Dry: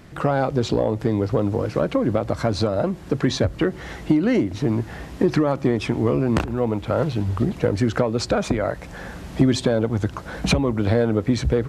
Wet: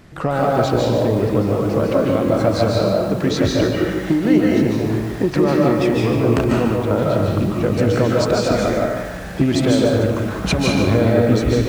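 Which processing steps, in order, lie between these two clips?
rattling part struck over -16 dBFS, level -28 dBFS; digital reverb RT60 0.95 s, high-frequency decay 0.85×, pre-delay 0.11 s, DRR -2 dB; lo-fi delay 0.145 s, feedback 35%, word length 6-bit, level -8 dB

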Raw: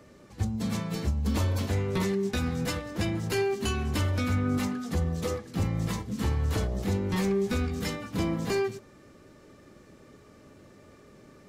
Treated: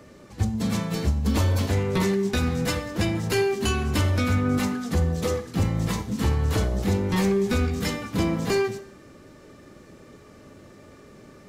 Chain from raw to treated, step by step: Schroeder reverb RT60 0.72 s, combs from 26 ms, DRR 13 dB; gain +5 dB

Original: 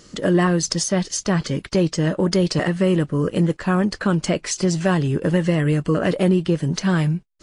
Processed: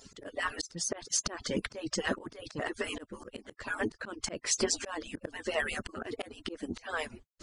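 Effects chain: median-filter separation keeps percussive; auto swell 0.364 s

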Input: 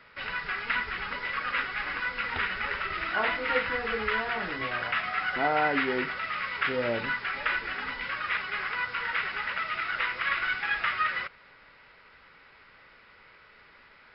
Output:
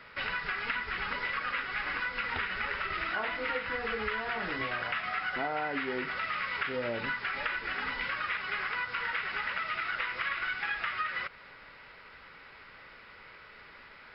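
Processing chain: compressor, threshold -34 dBFS, peak gain reduction 12.5 dB; gain +3.5 dB

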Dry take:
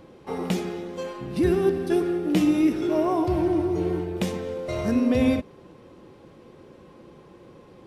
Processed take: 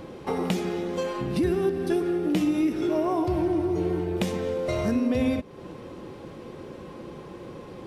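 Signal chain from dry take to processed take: compressor 2.5:1, threshold -35 dBFS, peak gain reduction 12.5 dB; gain +8 dB

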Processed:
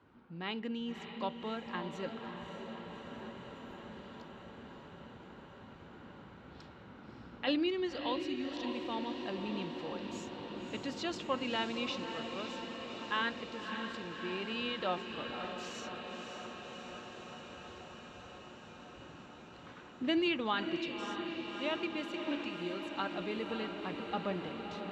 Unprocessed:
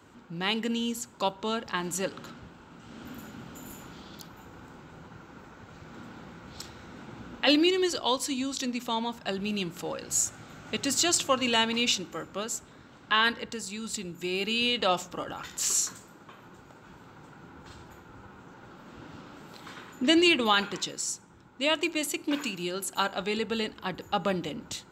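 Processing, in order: air absorption 250 m; diffused feedback echo 0.587 s, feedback 78%, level -7 dB; gain -8 dB

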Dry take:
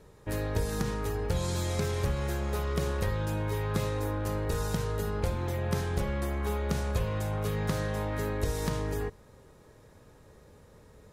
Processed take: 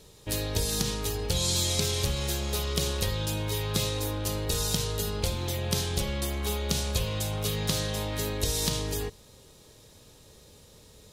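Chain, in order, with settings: resonant high shelf 2400 Hz +11.5 dB, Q 1.5

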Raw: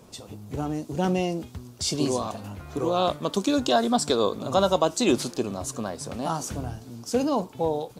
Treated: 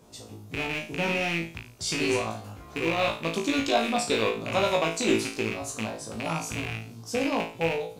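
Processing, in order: rattling part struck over -30 dBFS, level -15 dBFS; flutter echo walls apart 3.1 m, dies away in 0.37 s; gain -5.5 dB

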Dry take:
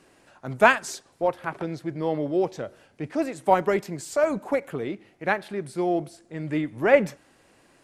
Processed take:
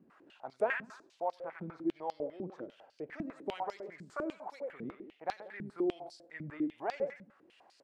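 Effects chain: compressor 1.5:1, threshold -45 dBFS, peak gain reduction 12.5 dB; feedback echo 92 ms, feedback 38%, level -10 dB; stepped band-pass 10 Hz 210–4700 Hz; gain +5.5 dB

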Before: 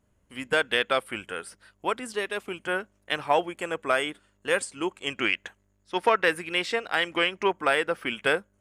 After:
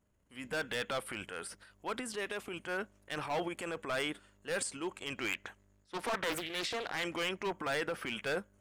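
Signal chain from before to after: hard clip -21.5 dBFS, distortion -8 dB; transient shaper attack -3 dB, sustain +9 dB; 5.33–7.03 Doppler distortion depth 0.7 ms; gain -7.5 dB

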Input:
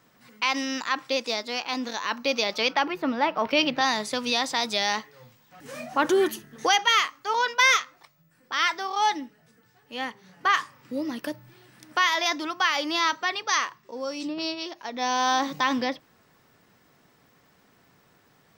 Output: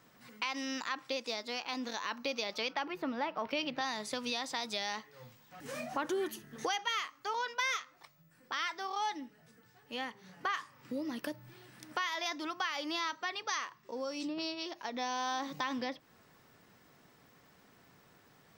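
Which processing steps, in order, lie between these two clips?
compressor 2.5:1, threshold -35 dBFS, peak gain reduction 13 dB; gain -2 dB

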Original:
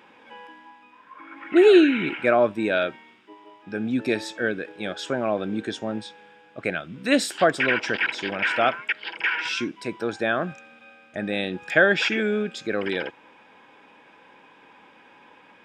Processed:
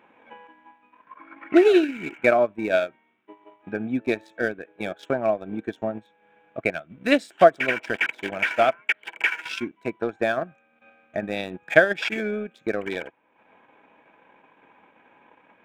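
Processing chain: Wiener smoothing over 9 samples; small resonant body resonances 660/2300 Hz, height 8 dB; transient shaper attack +7 dB, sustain -10 dB; gain -4 dB

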